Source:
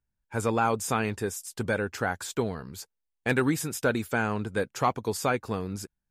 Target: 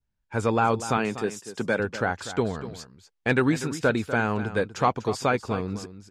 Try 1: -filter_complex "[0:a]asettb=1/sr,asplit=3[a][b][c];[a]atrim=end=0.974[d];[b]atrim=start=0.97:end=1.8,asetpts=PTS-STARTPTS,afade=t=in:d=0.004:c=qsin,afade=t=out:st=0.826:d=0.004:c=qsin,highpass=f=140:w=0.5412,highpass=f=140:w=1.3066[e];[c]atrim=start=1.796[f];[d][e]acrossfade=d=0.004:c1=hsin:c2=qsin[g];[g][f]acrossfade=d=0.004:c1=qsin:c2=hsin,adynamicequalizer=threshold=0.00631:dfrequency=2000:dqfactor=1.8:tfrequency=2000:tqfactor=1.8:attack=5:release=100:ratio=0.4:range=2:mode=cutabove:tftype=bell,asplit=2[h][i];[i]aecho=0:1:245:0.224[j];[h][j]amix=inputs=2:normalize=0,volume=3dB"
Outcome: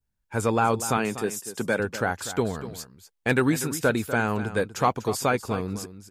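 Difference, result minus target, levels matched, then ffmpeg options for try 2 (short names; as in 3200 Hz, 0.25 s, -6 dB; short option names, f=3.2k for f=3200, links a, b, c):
8000 Hz band +6.5 dB
-filter_complex "[0:a]asettb=1/sr,asplit=3[a][b][c];[a]atrim=end=0.974[d];[b]atrim=start=0.97:end=1.8,asetpts=PTS-STARTPTS,afade=t=in:d=0.004:c=qsin,afade=t=out:st=0.826:d=0.004:c=qsin,highpass=f=140:w=0.5412,highpass=f=140:w=1.3066[e];[c]atrim=start=1.796[f];[d][e]acrossfade=d=0.004:c1=hsin:c2=qsin[g];[g][f]acrossfade=d=0.004:c1=qsin:c2=hsin,adynamicequalizer=threshold=0.00631:dfrequency=2000:dqfactor=1.8:tfrequency=2000:tqfactor=1.8:attack=5:release=100:ratio=0.4:range=2:mode=cutabove:tftype=bell,lowpass=5.7k,asplit=2[h][i];[i]aecho=0:1:245:0.224[j];[h][j]amix=inputs=2:normalize=0,volume=3dB"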